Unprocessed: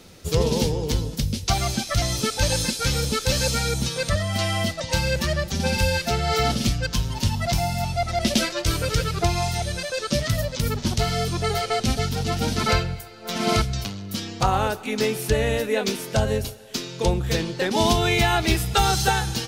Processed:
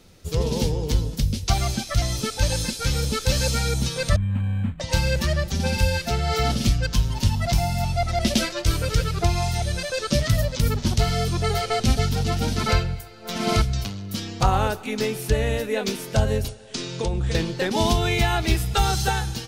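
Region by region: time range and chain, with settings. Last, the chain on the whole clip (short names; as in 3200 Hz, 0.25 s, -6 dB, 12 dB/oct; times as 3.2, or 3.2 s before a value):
4.16–4.8 brick-wall FIR band-stop 300–8400 Hz + decimation joined by straight lines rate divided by 8×
16.48–17.35 compressor 12:1, threshold -24 dBFS + brick-wall FIR low-pass 10000 Hz
whole clip: low shelf 87 Hz +8.5 dB; AGC; gain -6.5 dB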